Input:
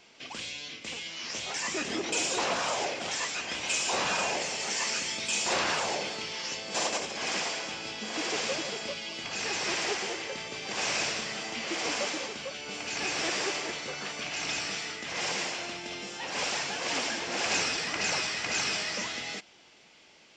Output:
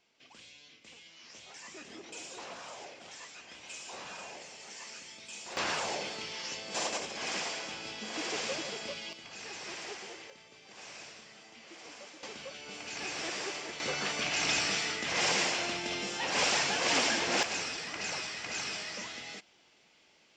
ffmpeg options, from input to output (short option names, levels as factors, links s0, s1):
-af "asetnsamples=n=441:p=0,asendcmd='5.57 volume volume -4dB;9.13 volume volume -11.5dB;10.3 volume volume -18dB;12.23 volume volume -6.5dB;13.8 volume volume 3dB;17.43 volume volume -7dB',volume=0.168"